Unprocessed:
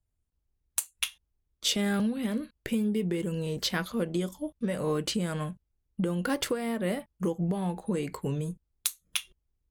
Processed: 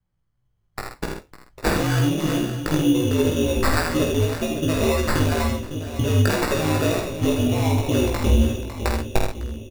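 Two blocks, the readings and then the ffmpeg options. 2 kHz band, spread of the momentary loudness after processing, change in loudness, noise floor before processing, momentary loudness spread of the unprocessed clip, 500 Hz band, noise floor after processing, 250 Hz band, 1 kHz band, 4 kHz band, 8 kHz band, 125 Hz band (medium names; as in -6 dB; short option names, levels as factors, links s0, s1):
+10.0 dB, 11 LU, +9.5 dB, -80 dBFS, 6 LU, +9.5 dB, -70 dBFS, +8.0 dB, +12.0 dB, +4.0 dB, +4.0 dB, +13.0 dB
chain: -filter_complex "[0:a]acompressor=threshold=0.0251:ratio=6,aeval=exprs='val(0)*sin(2*PI*75*n/s)':c=same,asplit=2[s0][s1];[s1]adelay=554,lowpass=f=1200:p=1,volume=0.355,asplit=2[s2][s3];[s3]adelay=554,lowpass=f=1200:p=1,volume=0.55,asplit=2[s4][s5];[s5]adelay=554,lowpass=f=1200:p=1,volume=0.55,asplit=2[s6][s7];[s7]adelay=554,lowpass=f=1200:p=1,volume=0.55,asplit=2[s8][s9];[s9]adelay=554,lowpass=f=1200:p=1,volume=0.55,asplit=2[s10][s11];[s11]adelay=554,lowpass=f=1200:p=1,volume=0.55[s12];[s2][s4][s6][s8][s10][s12]amix=inputs=6:normalize=0[s13];[s0][s13]amix=inputs=2:normalize=0,acrusher=samples=14:mix=1:aa=0.000001,dynaudnorm=f=660:g=3:m=3.55,asoftclip=type=hard:threshold=0.282,asplit=2[s14][s15];[s15]adelay=49,volume=0.531[s16];[s14][s16]amix=inputs=2:normalize=0,asplit=2[s17][s18];[s18]aecho=0:1:80:0.531[s19];[s17][s19]amix=inputs=2:normalize=0,flanger=delay=16.5:depth=2.7:speed=2,asubboost=boost=5.5:cutoff=61,volume=2.51"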